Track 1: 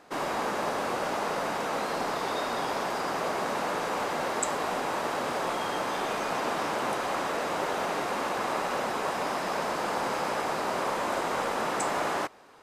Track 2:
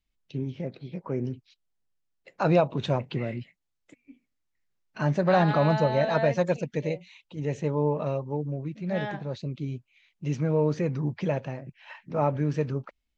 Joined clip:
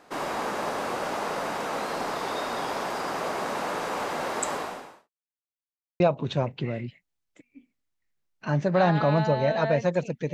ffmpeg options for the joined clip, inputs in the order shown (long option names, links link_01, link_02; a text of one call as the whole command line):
ffmpeg -i cue0.wav -i cue1.wav -filter_complex "[0:a]apad=whole_dur=10.33,atrim=end=10.33,asplit=2[link_01][link_02];[link_01]atrim=end=5.1,asetpts=PTS-STARTPTS,afade=type=out:start_time=4.56:duration=0.54:curve=qua[link_03];[link_02]atrim=start=5.1:end=6,asetpts=PTS-STARTPTS,volume=0[link_04];[1:a]atrim=start=2.53:end=6.86,asetpts=PTS-STARTPTS,afade=type=in:duration=0.004:curve=hsin[link_05];[link_03][link_04][link_05]concat=n=3:v=0:a=1" out.wav